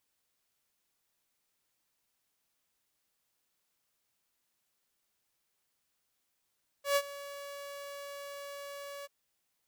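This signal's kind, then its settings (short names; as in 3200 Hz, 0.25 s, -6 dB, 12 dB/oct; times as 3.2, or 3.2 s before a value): ADSR saw 566 Hz, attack 0.122 s, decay 55 ms, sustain -18 dB, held 2.21 s, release 26 ms -21.5 dBFS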